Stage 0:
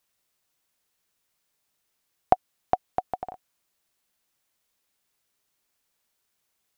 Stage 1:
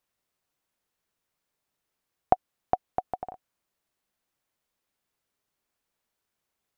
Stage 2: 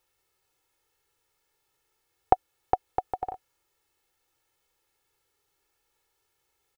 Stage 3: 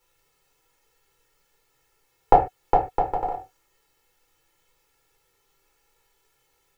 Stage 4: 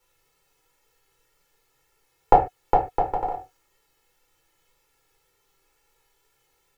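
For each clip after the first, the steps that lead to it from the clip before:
high shelf 2200 Hz -8 dB; gain -1 dB
comb 2.3 ms, depth 74%; harmonic-percussive split percussive -7 dB; gain +7.5 dB
reverb, pre-delay 3 ms, DRR -2.5 dB; gain +1.5 dB
wow and flutter 20 cents

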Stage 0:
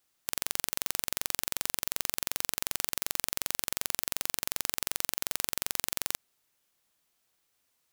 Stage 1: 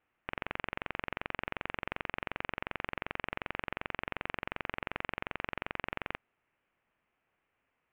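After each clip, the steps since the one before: steep low-pass 2700 Hz 48 dB/oct; gain +3 dB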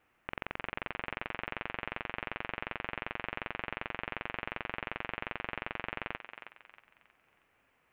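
negative-ratio compressor -42 dBFS, ratio -0.5; thinning echo 0.317 s, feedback 40%, high-pass 640 Hz, level -8 dB; gain +4 dB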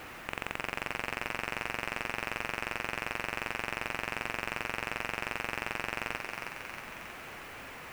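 power-law curve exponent 0.5

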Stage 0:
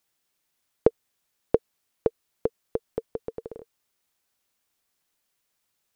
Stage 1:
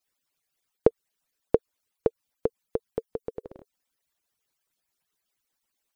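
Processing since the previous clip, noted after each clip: median-filter separation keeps percussive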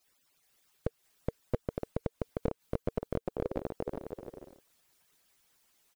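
flipped gate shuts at -20 dBFS, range -31 dB; bouncing-ball echo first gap 0.42 s, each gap 0.6×, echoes 5; slew limiter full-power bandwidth 12 Hz; gain +8.5 dB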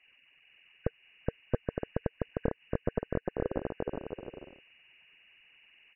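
nonlinear frequency compression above 1500 Hz 4:1; gain +2 dB

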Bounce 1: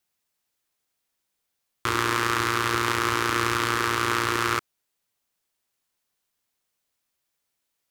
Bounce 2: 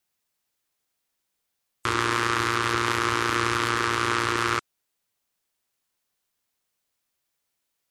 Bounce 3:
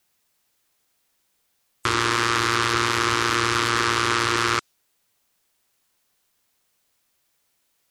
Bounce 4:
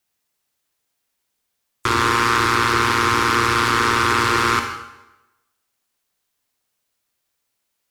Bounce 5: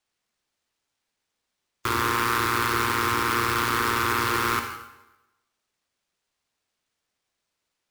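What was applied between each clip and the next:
spectral gate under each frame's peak -30 dB strong
dynamic EQ 4900 Hz, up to +5 dB, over -42 dBFS, Q 0.82; limiter -13 dBFS, peak gain reduction 10 dB; gain +9 dB
sample leveller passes 2; on a send at -4 dB: reverb RT60 1.0 s, pre-delay 44 ms; on the sum: gain -2.5 dB
sample-rate reducer 14000 Hz, jitter 20%; gain -6.5 dB

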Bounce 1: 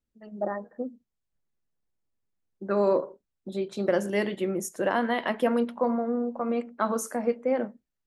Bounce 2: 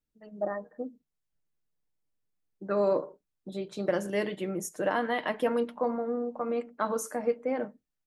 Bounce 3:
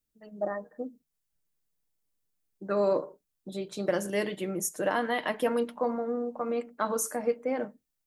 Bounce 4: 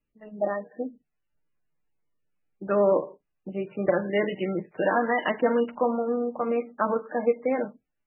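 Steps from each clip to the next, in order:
comb 6.6 ms, depth 37%; gain -3 dB
high shelf 5600 Hz +9.5 dB
gain +5 dB; MP3 8 kbps 16000 Hz

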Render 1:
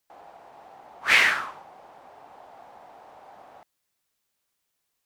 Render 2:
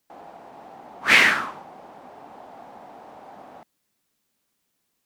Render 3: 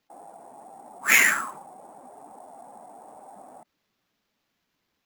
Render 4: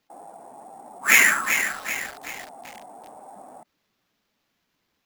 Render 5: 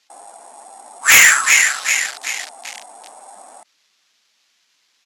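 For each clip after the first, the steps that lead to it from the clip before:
bell 230 Hz +10.5 dB 1.4 oct; gain +3 dB
spectral contrast raised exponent 1.5; sample-rate reducer 9100 Hz, jitter 0%; gain -2.5 dB
lo-fi delay 0.383 s, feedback 55%, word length 6-bit, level -7 dB; gain +2.5 dB
weighting filter ITU-R 468; downsampling 32000 Hz; sine folder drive 11 dB, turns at 7.5 dBFS; gain -10 dB

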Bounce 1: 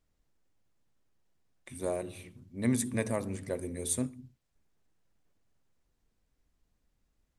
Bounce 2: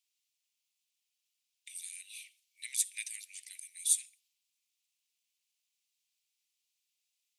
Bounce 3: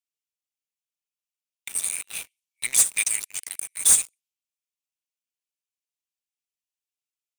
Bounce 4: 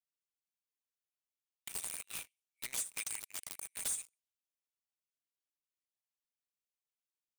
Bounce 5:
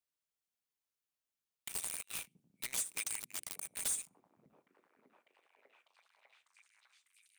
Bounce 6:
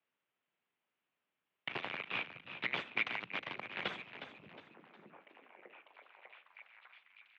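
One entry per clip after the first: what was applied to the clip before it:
steep high-pass 2400 Hz 48 dB/oct; gain +5 dB
dynamic EQ 7200 Hz, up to +5 dB, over -44 dBFS, Q 1.5; sample leveller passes 5; bell 4100 Hz -5.5 dB 0.84 oct
compressor 6:1, threshold -28 dBFS, peak gain reduction 13.5 dB; wrapped overs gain 22.5 dB; gain -8 dB
delay with a stepping band-pass 0.599 s, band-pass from 180 Hz, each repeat 0.7 oct, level -6 dB; gain +1 dB
wow and flutter 22 cents; frequency-shifting echo 0.361 s, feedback 39%, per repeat +67 Hz, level -10.5 dB; mistuned SSB -52 Hz 190–3100 Hz; gain +11 dB

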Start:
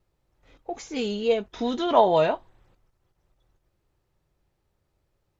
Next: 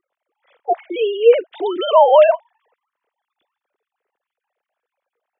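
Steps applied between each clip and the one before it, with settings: sine-wave speech; maximiser +12.5 dB; gain -1 dB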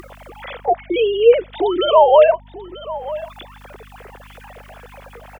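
upward compressor, threshold -12 dBFS; echo 0.938 s -16.5 dB; hum 50 Hz, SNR 25 dB

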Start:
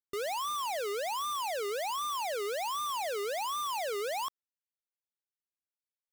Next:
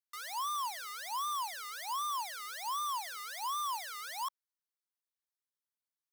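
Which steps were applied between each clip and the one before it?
Chebyshev high-pass 950 Hz, order 4; bell 2600 Hz -13 dB 0.39 oct; notch 7200 Hz, Q 9.6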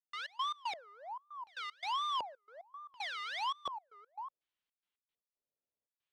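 limiter -33 dBFS, peak gain reduction 4.5 dB; LFO low-pass square 0.68 Hz 560–3100 Hz; step gate ".x.x.xxxx" 115 bpm -24 dB; gain +3 dB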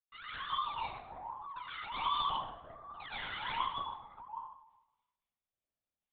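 plate-style reverb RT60 0.91 s, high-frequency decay 0.7×, pre-delay 95 ms, DRR -8.5 dB; LPC vocoder at 8 kHz whisper; gain -8.5 dB

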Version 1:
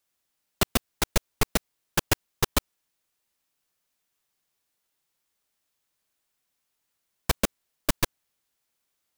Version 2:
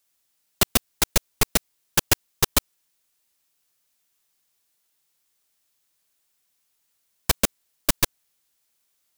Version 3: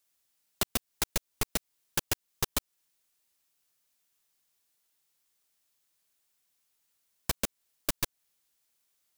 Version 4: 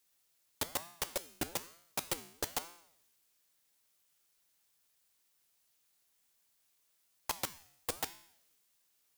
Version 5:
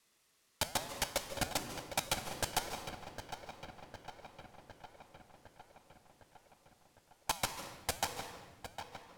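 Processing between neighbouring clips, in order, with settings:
high shelf 3100 Hz +7 dB; gain +1 dB
compressor 2.5:1, threshold -25 dBFS, peak gain reduction 8.5 dB; gain -4 dB
transient shaper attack -8 dB, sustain +2 dB; resonator 84 Hz, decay 0.68 s, harmonics odd, mix 70%; ring modulator with a swept carrier 620 Hz, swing 55%, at 1.1 Hz; gain +13 dB
darkening echo 0.757 s, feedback 67%, low-pass 4200 Hz, level -9 dB; reverb RT60 1.2 s, pre-delay 0.137 s, DRR 8 dB; decimation joined by straight lines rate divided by 2×

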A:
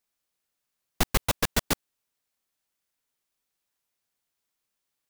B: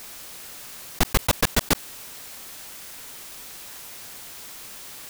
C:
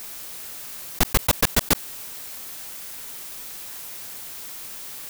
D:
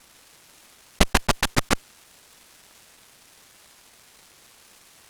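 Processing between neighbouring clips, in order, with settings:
fast leveller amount 70%; gain +2 dB
high shelf 10000 Hz +6 dB
CVSD 64 kbps; added harmonics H 3 -11 dB, 4 -7 dB, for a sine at -7.5 dBFS; gain +3 dB

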